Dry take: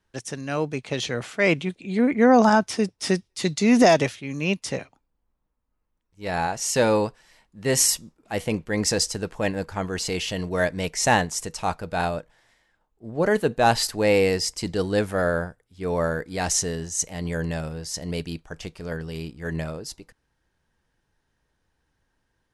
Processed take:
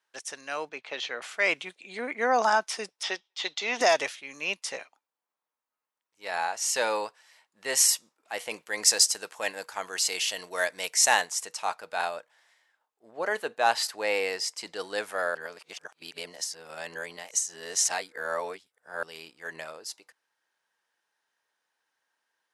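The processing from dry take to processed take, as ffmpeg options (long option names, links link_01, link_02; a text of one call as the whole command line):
ffmpeg -i in.wav -filter_complex "[0:a]asettb=1/sr,asplit=3[link_01][link_02][link_03];[link_01]atrim=end=0.694[link_04];[link_02]atrim=start=0.69:end=1.22,asetpts=PTS-STARTPTS,afade=type=in:duration=0.004:curve=qsin,afade=type=out:start_time=0.526:duration=0.004:curve=qsin,highpass=150,lowpass=3800[link_05];[link_03]atrim=start=1.216[link_06];[link_04][link_05]acrossfade=duration=0.004:curve1=hsin:curve2=qsin[link_07];[link_07][link_06]acrossfade=duration=0.004:curve1=qsin:curve2=hsin,asettb=1/sr,asplit=3[link_08][link_09][link_10];[link_08]atrim=end=3.034[link_11];[link_09]atrim=start=3.03:end=3.81,asetpts=PTS-STARTPTS,afade=type=in:duration=0.004:curve=qsin,afade=type=out:start_time=0.776:duration=0.004:curve=qsin,highpass=310,equalizer=frequency=830:width_type=q:width=4:gain=5,equalizer=frequency=3300:width_type=q:width=4:gain=10,equalizer=frequency=4600:width_type=q:width=4:gain=-5,lowpass=frequency=5600:width=0.5412,lowpass=frequency=5600:width=1.3066[link_12];[link_10]atrim=start=3.806[link_13];[link_11][link_12]acrossfade=duration=0.004:curve1=hsin:curve2=qsin[link_14];[link_14][link_13]acrossfade=duration=0.004:curve1=qsin:curve2=hsin,asettb=1/sr,asplit=3[link_15][link_16][link_17];[link_15]atrim=end=8.514[link_18];[link_16]atrim=start=8.51:end=11.29,asetpts=PTS-STARTPTS,afade=type=in:duration=0.004:curve=qsin,afade=type=out:start_time=2.776:duration=0.004:curve=qsin,aemphasis=mode=production:type=cd[link_19];[link_17]atrim=start=11.286[link_20];[link_18][link_19]acrossfade=duration=0.004:curve1=hsin:curve2=qsin[link_21];[link_21][link_20]acrossfade=duration=0.004:curve1=qsin:curve2=hsin,asettb=1/sr,asplit=3[link_22][link_23][link_24];[link_22]atrim=end=13.114[link_25];[link_23]atrim=start=13.11:end=14.8,asetpts=PTS-STARTPTS,afade=type=in:duration=0.004:curve=qsin,afade=type=out:start_time=1.686:duration=0.004:curve=qsin,highshelf=frequency=4700:gain=-5[link_26];[link_24]atrim=start=14.796[link_27];[link_25][link_26]acrossfade=duration=0.004:curve1=hsin:curve2=qsin[link_28];[link_28][link_27]acrossfade=duration=0.004:curve1=qsin:curve2=hsin,asplit=3[link_29][link_30][link_31];[link_29]atrim=end=15.352[link_32];[link_30]atrim=start=15.348:end=19.032,asetpts=PTS-STARTPTS,areverse[link_33];[link_31]atrim=start=19.028[link_34];[link_32][link_33]acrossfade=duration=0.004:curve1=hsin:curve2=hsin[link_35];[link_35][link_34]acrossfade=duration=0.004:curve1=hsin:curve2=hsin,highpass=760,volume=-1.5dB" out.wav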